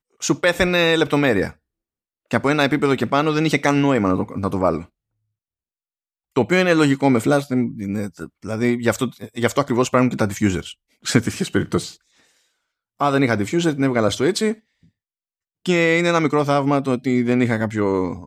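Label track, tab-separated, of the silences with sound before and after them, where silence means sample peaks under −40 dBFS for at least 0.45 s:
1.530000	2.310000	silence
4.850000	6.360000	silence
11.950000	13.000000	silence
14.580000	15.660000	silence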